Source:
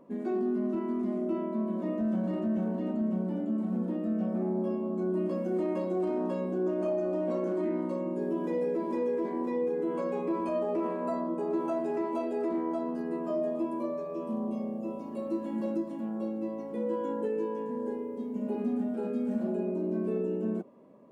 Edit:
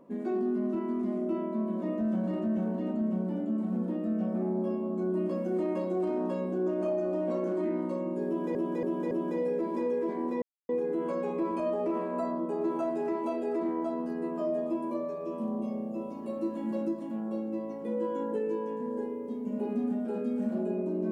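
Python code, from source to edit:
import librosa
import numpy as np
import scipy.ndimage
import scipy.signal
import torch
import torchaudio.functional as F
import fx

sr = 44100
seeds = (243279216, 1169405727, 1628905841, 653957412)

y = fx.edit(x, sr, fx.repeat(start_s=8.27, length_s=0.28, count=4),
    fx.insert_silence(at_s=9.58, length_s=0.27), tone=tone)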